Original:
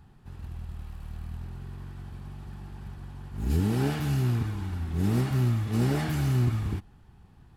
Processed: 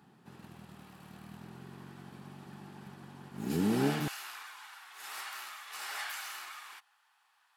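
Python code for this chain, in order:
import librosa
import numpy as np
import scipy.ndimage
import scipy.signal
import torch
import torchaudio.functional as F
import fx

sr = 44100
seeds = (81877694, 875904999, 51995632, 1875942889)

y = fx.highpass(x, sr, hz=fx.steps((0.0, 170.0), (4.08, 1000.0)), slope=24)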